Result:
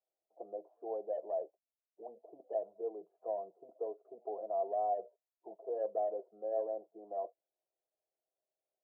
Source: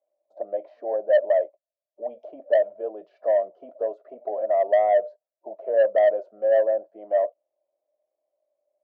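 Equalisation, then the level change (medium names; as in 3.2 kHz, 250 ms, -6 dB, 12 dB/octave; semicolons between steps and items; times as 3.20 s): Chebyshev low-pass 640 Hz, order 2; static phaser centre 390 Hz, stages 8; -5.0 dB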